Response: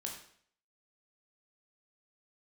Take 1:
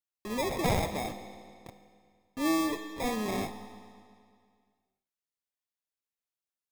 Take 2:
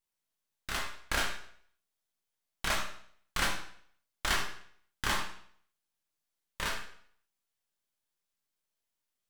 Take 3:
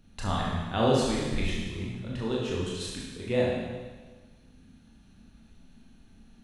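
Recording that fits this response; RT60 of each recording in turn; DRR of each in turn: 2; 2.2 s, 0.60 s, 1.4 s; 9.0 dB, -0.5 dB, -5.0 dB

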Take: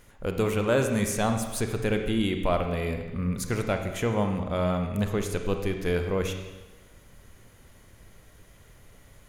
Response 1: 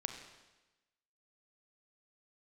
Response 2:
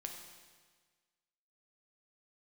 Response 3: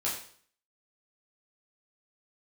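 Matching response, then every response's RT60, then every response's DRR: 1; 1.1 s, 1.5 s, 0.55 s; 5.0 dB, 2.5 dB, -6.5 dB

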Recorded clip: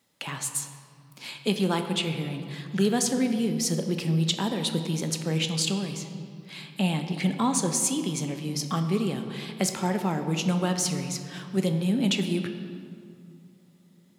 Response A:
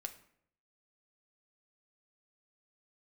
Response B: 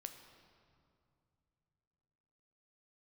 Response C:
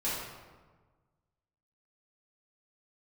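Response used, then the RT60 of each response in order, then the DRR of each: B; 0.65 s, 2.6 s, 1.4 s; 4.5 dB, 6.0 dB, -9.5 dB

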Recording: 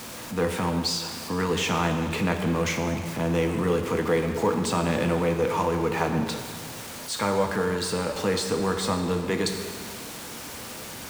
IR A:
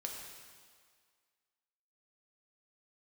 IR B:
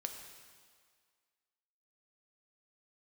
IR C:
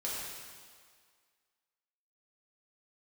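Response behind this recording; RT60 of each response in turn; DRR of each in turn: B; 1.9 s, 1.9 s, 1.9 s; 0.0 dB, 4.0 dB, -7.0 dB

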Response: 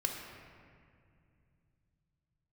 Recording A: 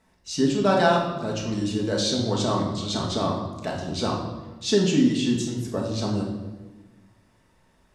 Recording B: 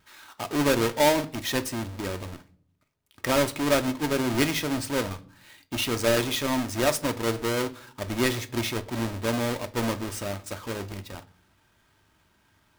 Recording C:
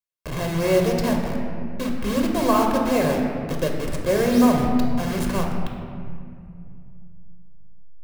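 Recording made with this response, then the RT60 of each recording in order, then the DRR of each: C; 1.2 s, 0.50 s, 2.3 s; -1.5 dB, 9.0 dB, 1.5 dB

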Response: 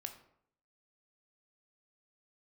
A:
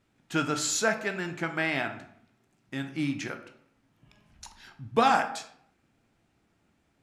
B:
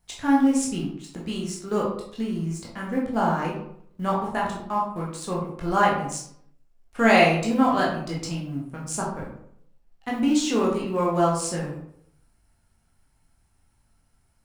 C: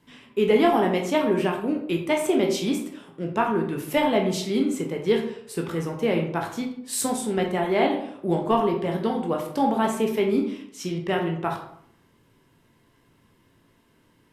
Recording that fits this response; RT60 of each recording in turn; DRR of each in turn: A; 0.70 s, 0.65 s, 0.65 s; 6.0 dB, -4.5 dB, 0.5 dB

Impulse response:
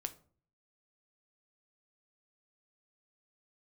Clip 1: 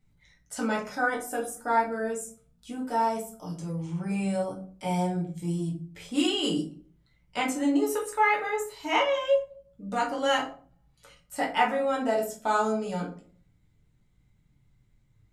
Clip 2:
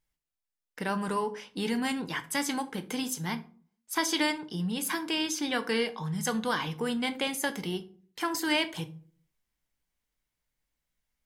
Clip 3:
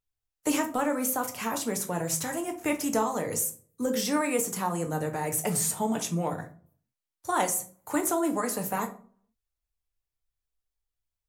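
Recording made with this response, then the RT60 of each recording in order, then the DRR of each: 2; 0.45 s, 0.45 s, 0.45 s; -2.5 dB, 8.5 dB, 4.0 dB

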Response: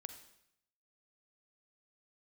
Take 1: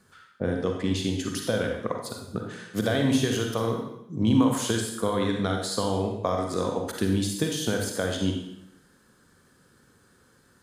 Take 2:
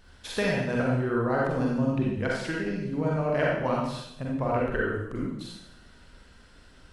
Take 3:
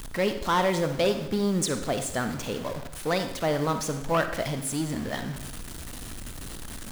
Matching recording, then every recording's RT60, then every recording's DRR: 3; 0.75 s, 0.75 s, 0.75 s; 1.5 dB, -4.0 dB, 8.0 dB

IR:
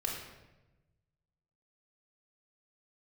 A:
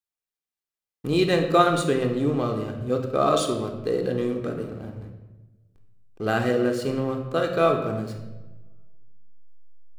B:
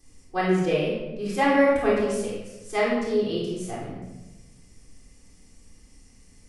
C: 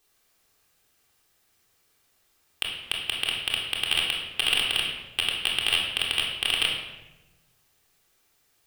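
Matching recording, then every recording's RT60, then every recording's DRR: C; 1.1 s, 1.0 s, 1.0 s; 3.0 dB, -10.5 dB, -4.0 dB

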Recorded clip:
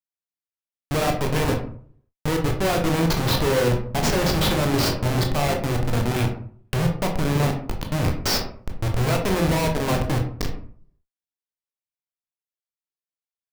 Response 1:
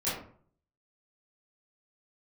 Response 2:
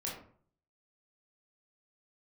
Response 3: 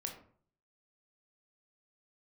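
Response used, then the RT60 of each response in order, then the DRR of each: 3; 0.50 s, 0.50 s, 0.50 s; -12.0 dB, -4.5 dB, 2.0 dB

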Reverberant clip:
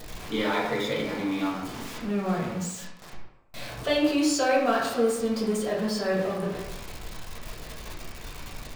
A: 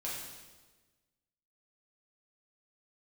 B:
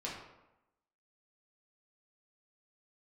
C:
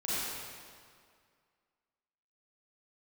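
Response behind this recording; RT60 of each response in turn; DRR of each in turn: B; 1.3 s, 0.95 s, 2.1 s; -6.5 dB, -6.0 dB, -11.0 dB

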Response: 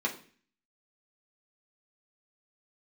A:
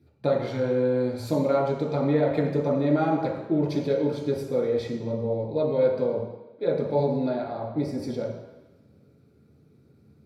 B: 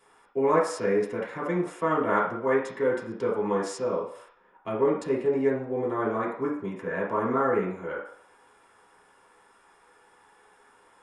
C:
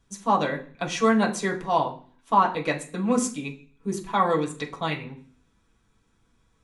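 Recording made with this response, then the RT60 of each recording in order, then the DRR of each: C; no single decay rate, 0.65 s, 0.45 s; -5.0 dB, -6.5 dB, -2.5 dB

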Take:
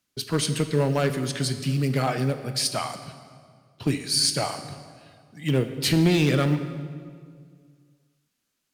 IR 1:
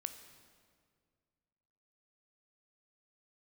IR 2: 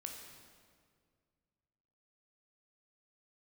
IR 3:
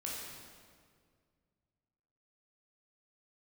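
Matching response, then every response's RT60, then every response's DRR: 1; 2.0 s, 2.0 s, 2.0 s; 8.5 dB, 1.5 dB, -4.5 dB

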